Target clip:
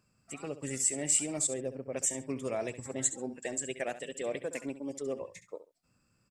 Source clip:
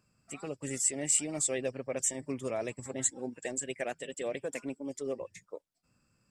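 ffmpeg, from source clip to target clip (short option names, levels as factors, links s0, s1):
-filter_complex "[0:a]asettb=1/sr,asplit=3[s0][s1][s2];[s0]atrim=end=1.474[s3];[s1]atrim=start=1.47:end=1.93,asetpts=PTS-STARTPTS,afade=t=in:d=0.004:c=qsin,afade=t=out:st=0.456:d=0.004:c=qsin,equalizer=f=2800:t=o:w=2.9:g=-14[s4];[s2]atrim=start=1.926[s5];[s3][s4]acrossfade=d=0.004:c1=hsin:c2=qsin[s6];[s6][s5]acrossfade=d=0.004:c1=qsin:c2=hsin,aecho=1:1:68|136:0.224|0.0448"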